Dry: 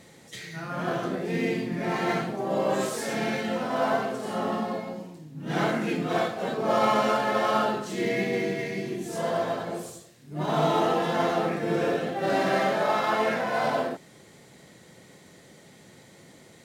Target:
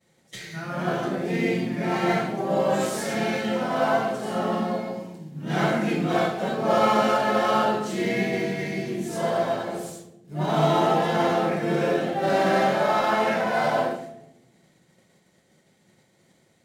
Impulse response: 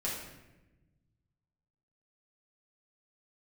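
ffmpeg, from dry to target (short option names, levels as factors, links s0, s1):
-filter_complex "[0:a]agate=range=0.0224:threshold=0.00794:ratio=3:detection=peak,asplit=2[s0][s1];[1:a]atrim=start_sample=2205,asetrate=52920,aresample=44100[s2];[s1][s2]afir=irnorm=-1:irlink=0,volume=0.422[s3];[s0][s3]amix=inputs=2:normalize=0"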